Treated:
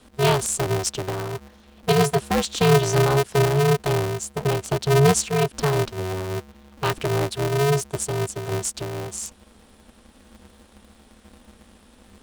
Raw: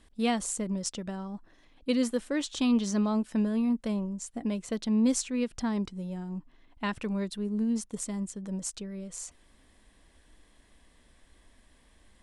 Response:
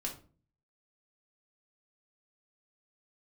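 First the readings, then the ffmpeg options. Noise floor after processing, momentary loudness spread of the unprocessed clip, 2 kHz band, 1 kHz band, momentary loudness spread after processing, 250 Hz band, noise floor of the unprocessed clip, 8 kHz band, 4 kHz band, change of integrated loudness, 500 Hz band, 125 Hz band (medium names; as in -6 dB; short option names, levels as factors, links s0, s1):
-53 dBFS, 13 LU, +13.5 dB, +14.5 dB, 12 LU, -1.0 dB, -62 dBFS, +9.0 dB, +11.0 dB, +8.5 dB, +15.0 dB, +17.5 dB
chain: -af "afreqshift=56,asuperstop=centerf=2000:order=4:qfactor=4.4,aeval=exprs='val(0)*sgn(sin(2*PI*140*n/s))':c=same,volume=2.66"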